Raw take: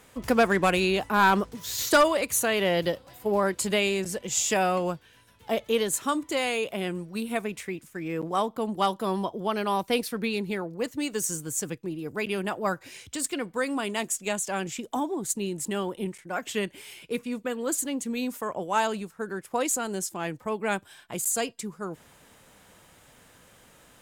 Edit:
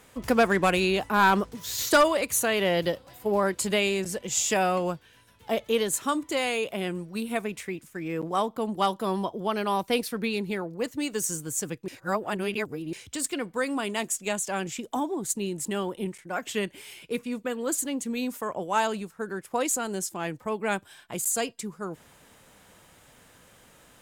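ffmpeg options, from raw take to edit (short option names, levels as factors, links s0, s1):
-filter_complex "[0:a]asplit=3[s0][s1][s2];[s0]atrim=end=11.882[s3];[s1]atrim=start=11.878:end=12.932,asetpts=PTS-STARTPTS,areverse[s4];[s2]atrim=start=12.928[s5];[s3][s4]acrossfade=d=0.004:c1=hsin:c2=hsin[s6];[s6][s5]acrossfade=d=0.004:c1=hsin:c2=hsin"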